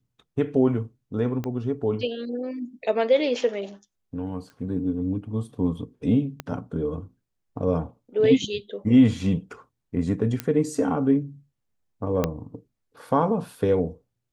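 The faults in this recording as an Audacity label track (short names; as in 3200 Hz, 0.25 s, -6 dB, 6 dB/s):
1.440000	1.440000	pop -18 dBFS
4.500000	4.500000	pop -33 dBFS
6.400000	6.400000	pop -16 dBFS
10.400000	10.400000	pop -11 dBFS
12.240000	12.240000	pop -9 dBFS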